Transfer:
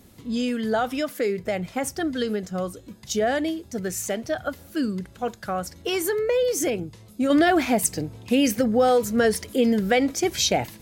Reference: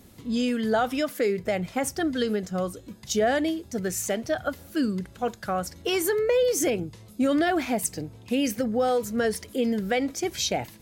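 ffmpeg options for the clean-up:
ffmpeg -i in.wav -af "asetnsamples=nb_out_samples=441:pad=0,asendcmd='7.3 volume volume -5dB',volume=0dB" out.wav

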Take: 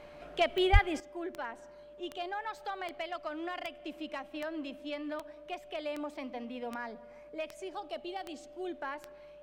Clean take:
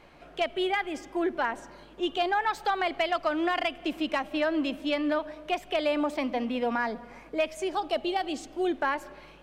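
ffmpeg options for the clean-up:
ffmpeg -i in.wav -filter_complex "[0:a]adeclick=threshold=4,bandreject=frequency=590:width=30,asplit=3[link_01][link_02][link_03];[link_01]afade=type=out:start_time=0.72:duration=0.02[link_04];[link_02]highpass=frequency=140:width=0.5412,highpass=frequency=140:width=1.3066,afade=type=in:start_time=0.72:duration=0.02,afade=type=out:start_time=0.84:duration=0.02[link_05];[link_03]afade=type=in:start_time=0.84:duration=0.02[link_06];[link_04][link_05][link_06]amix=inputs=3:normalize=0,asetnsamples=nb_out_samples=441:pad=0,asendcmd='1 volume volume 11.5dB',volume=0dB" out.wav

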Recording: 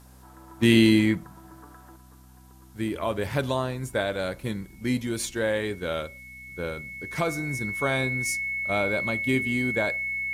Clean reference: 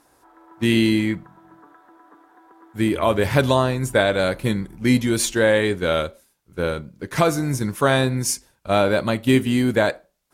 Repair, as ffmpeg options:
ffmpeg -i in.wav -af "bandreject=frequency=63.3:width_type=h:width=4,bandreject=frequency=126.6:width_type=h:width=4,bandreject=frequency=189.9:width_type=h:width=4,bandreject=frequency=253.2:width_type=h:width=4,bandreject=frequency=2200:width=30,agate=range=-21dB:threshold=-42dB,asetnsamples=nb_out_samples=441:pad=0,asendcmd='1.96 volume volume 9dB',volume=0dB" out.wav

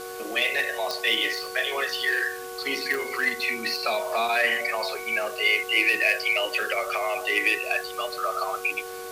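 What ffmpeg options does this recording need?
ffmpeg -i in.wav -af "adeclick=threshold=4,bandreject=frequency=370.7:width_type=h:width=4,bandreject=frequency=741.4:width_type=h:width=4,bandreject=frequency=1112.1:width_type=h:width=4,bandreject=frequency=1482.8:width_type=h:width=4,bandreject=frequency=470:width=30,afwtdn=0.0071" out.wav

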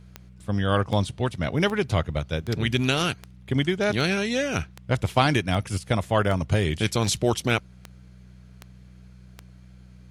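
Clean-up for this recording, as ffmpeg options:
ffmpeg -i in.wav -af "adeclick=threshold=4,bandreject=frequency=61.9:width_type=h:width=4,bandreject=frequency=123.8:width_type=h:width=4,bandreject=frequency=185.7:width_type=h:width=4" out.wav

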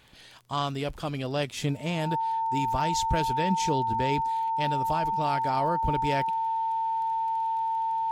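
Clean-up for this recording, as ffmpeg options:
ffmpeg -i in.wav -af "adeclick=threshold=4,bandreject=frequency=900:width=30" out.wav

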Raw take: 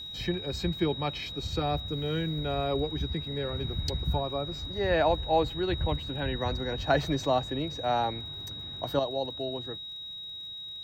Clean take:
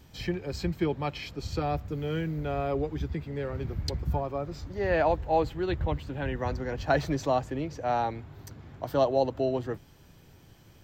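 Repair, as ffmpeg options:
ffmpeg -i in.wav -af "adeclick=threshold=4,bandreject=frequency=3800:width=30,asetnsamples=nb_out_samples=441:pad=0,asendcmd='8.99 volume volume 7dB',volume=0dB" out.wav

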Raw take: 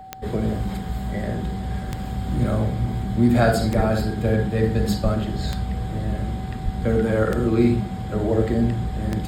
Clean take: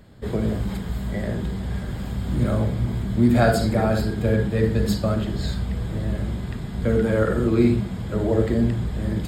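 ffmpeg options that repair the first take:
ffmpeg -i in.wav -filter_complex "[0:a]adeclick=threshold=4,bandreject=frequency=760:width=30,asplit=3[link_01][link_02][link_03];[link_01]afade=type=out:start_time=3.76:duration=0.02[link_04];[link_02]highpass=frequency=140:width=0.5412,highpass=frequency=140:width=1.3066,afade=type=in:start_time=3.76:duration=0.02,afade=type=out:start_time=3.88:duration=0.02[link_05];[link_03]afade=type=in:start_time=3.88:duration=0.02[link_06];[link_04][link_05][link_06]amix=inputs=3:normalize=0,asplit=3[link_07][link_08][link_09];[link_07]afade=type=out:start_time=5.03:duration=0.02[link_10];[link_08]highpass=frequency=140:width=0.5412,highpass=frequency=140:width=1.3066,afade=type=in:start_time=5.03:duration=0.02,afade=type=out:start_time=5.15:duration=0.02[link_11];[link_09]afade=type=in:start_time=5.15:duration=0.02[link_12];[link_10][link_11][link_12]amix=inputs=3:normalize=0,asplit=3[link_13][link_14][link_15];[link_13]afade=type=out:start_time=6.64:duration=0.02[link_16];[link_14]highpass=frequency=140:width=0.5412,highpass=frequency=140:width=1.3066,afade=type=in:start_time=6.64:duration=0.02,afade=type=out:start_time=6.76:duration=0.02[link_17];[link_15]afade=type=in:start_time=6.76:duration=0.02[link_18];[link_16][link_17][link_18]amix=inputs=3:normalize=0" out.wav

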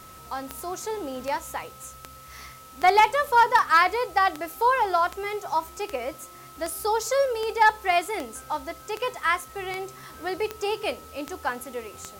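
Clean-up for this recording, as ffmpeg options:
ffmpeg -i in.wav -af "adeclick=threshold=4,bandreject=frequency=1300:width=30,afwtdn=0.0028" out.wav

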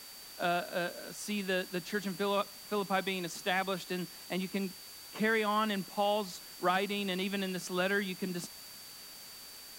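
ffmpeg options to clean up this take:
ffmpeg -i in.wav -af "bandreject=frequency=4600:width=30,afwtdn=0.0032" out.wav

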